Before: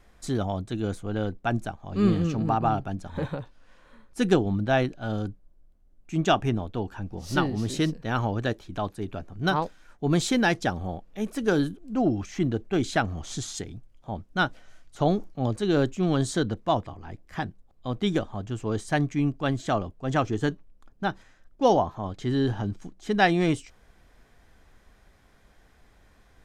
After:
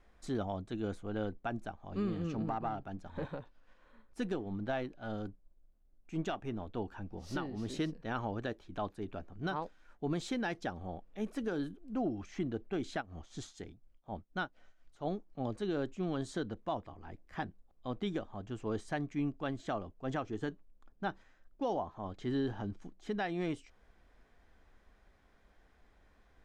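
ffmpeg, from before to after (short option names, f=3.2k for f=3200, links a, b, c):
-filter_complex "[0:a]asettb=1/sr,asplit=3[a][b][c];[a]atrim=end=2.454[d];[b]atrim=start=2.45:end=6.67,asetpts=PTS-STARTPTS,afade=t=in:d=0.004:c=qsin,afade=t=out:st=4.216:d=0.004:c=qsin,aeval=exprs='if(lt(val(0),0),0.708*val(0),val(0))':c=same[e];[c]atrim=start=6.666[f];[d][e]acrossfade=d=0.004:c1=hsin:c2=qsin[g];[g][f]acrossfade=d=0.004:c1=qsin:c2=hsin,asplit=3[h][i][j];[h]afade=t=out:st=13:d=0.02[k];[i]tremolo=f=4.1:d=0.8,afade=t=in:st=13:d=0.02,afade=t=out:st=15.31:d=0.02[l];[j]afade=t=in:st=15.31:d=0.02[m];[k][l][m]amix=inputs=3:normalize=0,lowpass=f=3.2k:p=1,equalizer=f=120:t=o:w=1:g=-6,alimiter=limit=-19dB:level=0:latency=1:release=330,volume=-6.5dB"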